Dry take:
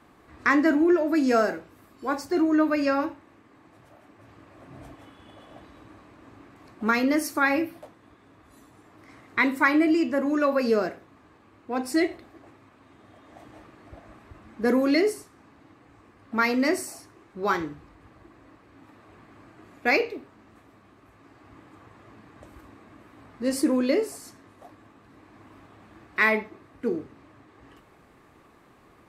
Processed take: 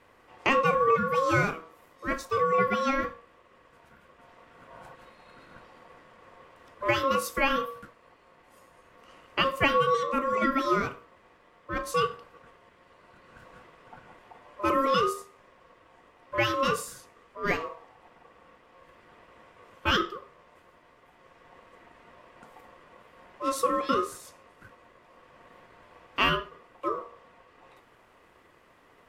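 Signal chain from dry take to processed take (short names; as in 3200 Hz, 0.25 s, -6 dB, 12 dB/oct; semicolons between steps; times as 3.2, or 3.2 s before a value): de-hum 83.3 Hz, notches 6; ring modulator 810 Hz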